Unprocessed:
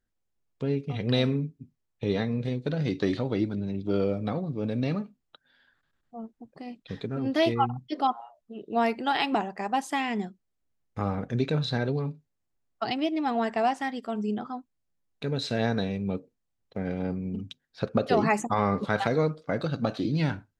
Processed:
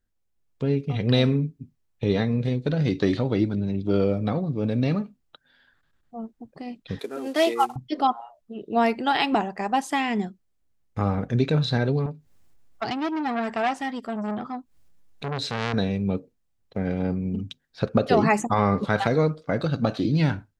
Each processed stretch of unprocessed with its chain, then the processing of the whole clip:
6.99–7.76 CVSD 64 kbps + HPF 330 Hz 24 dB/oct
12.06–15.74 upward compressor, threshold -44 dBFS + core saturation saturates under 1800 Hz
whole clip: low shelf 110 Hz +5.5 dB; AGC gain up to 3.5 dB

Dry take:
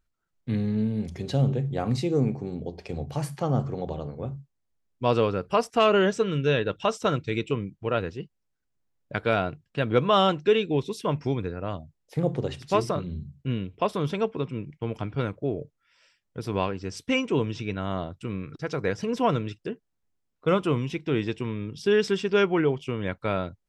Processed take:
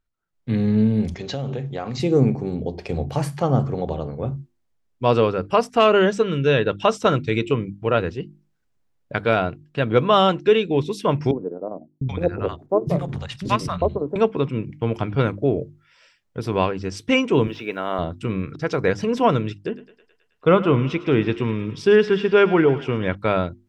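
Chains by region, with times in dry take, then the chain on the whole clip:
1.14–2 careless resampling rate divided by 3×, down none, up filtered + low shelf 410 Hz -10.5 dB + compressor 4:1, threshold -31 dBFS
11.31–14.16 chopper 10 Hz, depth 65%, duty 70% + three bands offset in time mids, lows, highs 0.7/0.78 s, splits 220/780 Hz
17.47–17.99 BPF 350–3500 Hz + requantised 12-bit, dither triangular
19.57–23.15 treble ducked by the level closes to 3000 Hz, closed at -21.5 dBFS + thinning echo 0.107 s, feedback 71%, high-pass 530 Hz, level -15 dB
whole clip: high shelf 5400 Hz -6 dB; notches 50/100/150/200/250/300/350 Hz; AGC gain up to 11.5 dB; gain -2.5 dB

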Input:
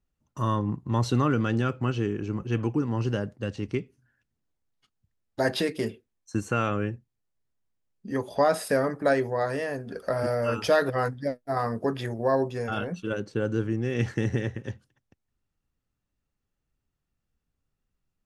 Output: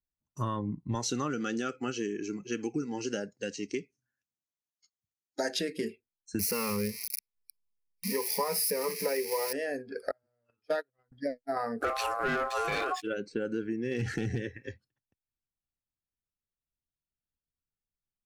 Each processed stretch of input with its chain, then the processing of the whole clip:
0.95–5.59 HPF 170 Hz 6 dB/oct + bell 6300 Hz +13.5 dB 0.72 oct
6.39–9.53 switching spikes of -18.5 dBFS + ripple EQ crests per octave 0.86, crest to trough 17 dB
10.11–11.12 gate -21 dBFS, range -37 dB + low shelf 320 Hz +3.5 dB
11.81–13.02 high shelf 3500 Hz +8.5 dB + sample leveller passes 3 + ring modulator 920 Hz
13.91–14.38 bell 66 Hz -14.5 dB 0.25 oct + hard clip -20.5 dBFS + fast leveller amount 50%
whole clip: spectral noise reduction 17 dB; compressor 4:1, threshold -29 dBFS

